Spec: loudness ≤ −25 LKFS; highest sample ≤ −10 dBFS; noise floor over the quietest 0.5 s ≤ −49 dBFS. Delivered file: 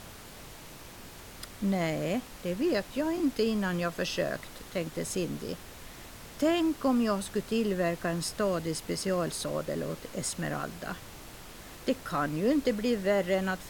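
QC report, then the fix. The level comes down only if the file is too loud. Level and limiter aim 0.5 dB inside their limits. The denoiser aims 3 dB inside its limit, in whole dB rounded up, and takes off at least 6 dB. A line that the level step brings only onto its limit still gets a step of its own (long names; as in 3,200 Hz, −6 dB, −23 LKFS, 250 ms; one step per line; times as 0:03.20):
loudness −31.0 LKFS: in spec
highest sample −15.5 dBFS: in spec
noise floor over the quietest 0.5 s −47 dBFS: out of spec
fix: broadband denoise 6 dB, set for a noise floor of −47 dBFS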